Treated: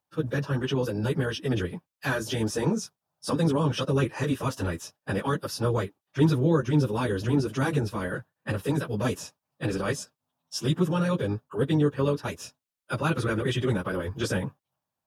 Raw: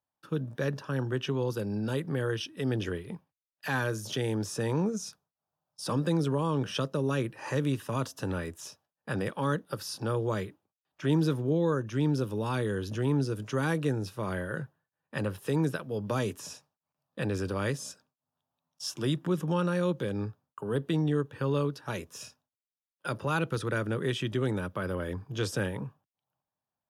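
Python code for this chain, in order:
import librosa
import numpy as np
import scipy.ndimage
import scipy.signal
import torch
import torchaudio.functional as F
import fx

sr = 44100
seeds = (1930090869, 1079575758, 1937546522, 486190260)

y = fx.stretch_vocoder_free(x, sr, factor=0.56)
y = y * librosa.db_to_amplitude(7.5)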